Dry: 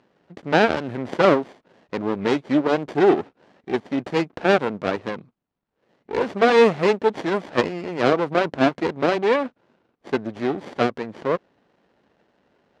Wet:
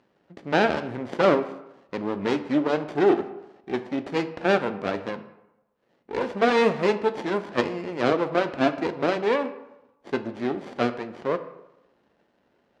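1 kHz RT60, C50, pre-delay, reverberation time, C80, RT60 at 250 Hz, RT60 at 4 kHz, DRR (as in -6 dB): 0.95 s, 13.0 dB, 3 ms, 0.95 s, 15.0 dB, 0.85 s, 0.55 s, 9.0 dB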